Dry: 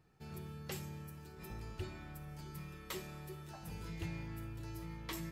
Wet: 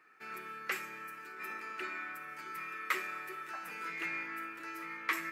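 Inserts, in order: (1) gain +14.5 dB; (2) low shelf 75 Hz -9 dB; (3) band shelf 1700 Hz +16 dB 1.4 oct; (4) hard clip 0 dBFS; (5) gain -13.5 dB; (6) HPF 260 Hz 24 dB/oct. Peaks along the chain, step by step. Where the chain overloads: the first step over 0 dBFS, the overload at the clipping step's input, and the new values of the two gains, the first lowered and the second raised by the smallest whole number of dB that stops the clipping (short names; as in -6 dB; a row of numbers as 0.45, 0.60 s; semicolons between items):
-16.0, -16.0, -3.0, -3.0, -16.5, -16.0 dBFS; no overload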